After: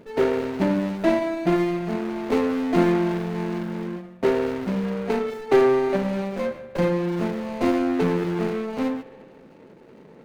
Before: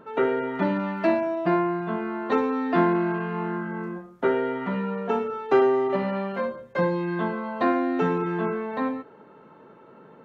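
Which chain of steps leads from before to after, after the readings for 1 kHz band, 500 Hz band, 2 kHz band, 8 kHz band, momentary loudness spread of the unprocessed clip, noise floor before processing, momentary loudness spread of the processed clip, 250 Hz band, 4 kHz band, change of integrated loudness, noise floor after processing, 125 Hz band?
−3.0 dB, +2.0 dB, −1.0 dB, can't be measured, 8 LU, −51 dBFS, 8 LU, +3.0 dB, +6.0 dB, +1.5 dB, −48 dBFS, +3.5 dB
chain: running median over 41 samples
spring reverb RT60 2.1 s, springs 44 ms, chirp 25 ms, DRR 13.5 dB
level +4 dB

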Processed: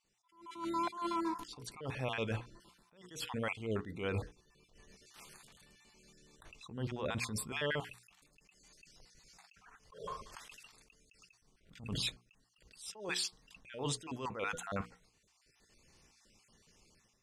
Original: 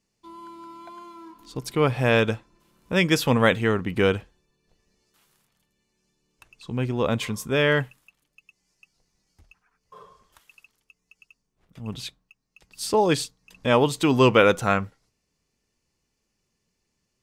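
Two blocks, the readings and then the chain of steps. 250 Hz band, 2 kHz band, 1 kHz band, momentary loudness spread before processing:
−17.0 dB, −16.0 dB, −13.5 dB, 18 LU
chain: time-frequency cells dropped at random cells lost 34%
low-shelf EQ 130 Hz +6 dB
automatic gain control gain up to 13.5 dB
low-shelf EQ 320 Hz −6.5 dB
reversed playback
downward compressor 10 to 1, threshold −28 dBFS, peak gain reduction 19 dB
reversed playback
pitch vibrato 7.4 Hz 19 cents
brickwall limiter −25 dBFS, peak gain reduction 9.5 dB
low-pass filter 11,000 Hz 24 dB per octave
mains-hum notches 60/120/180/240/300/360/420/480 Hz
level that may rise only so fast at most 120 dB per second
level −1 dB

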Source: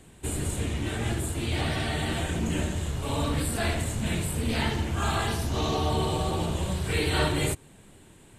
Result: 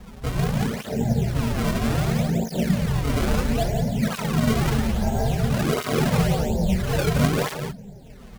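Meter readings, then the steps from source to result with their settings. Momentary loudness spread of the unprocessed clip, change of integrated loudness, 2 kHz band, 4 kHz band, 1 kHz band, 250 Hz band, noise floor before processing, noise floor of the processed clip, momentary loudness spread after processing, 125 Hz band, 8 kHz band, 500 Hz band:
4 LU, +5.0 dB, +1.5 dB, −0.5 dB, +2.5 dB, +8.0 dB, −53 dBFS, −42 dBFS, 5 LU, +6.0 dB, −0.5 dB, +5.5 dB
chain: spectral tilt −2 dB per octave
in parallel at 0 dB: downward compressor, threshold −30 dBFS, peak gain reduction 13.5 dB
on the sum: moving average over 15 samples
phaser with its sweep stopped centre 320 Hz, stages 6
sample-and-hold swept by an LFO 29×, swing 160% 0.73 Hz
on a send: single-tap delay 175 ms −7 dB
on the sum: through-zero flanger with one copy inverted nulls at 0.6 Hz, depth 7.6 ms
level +7 dB

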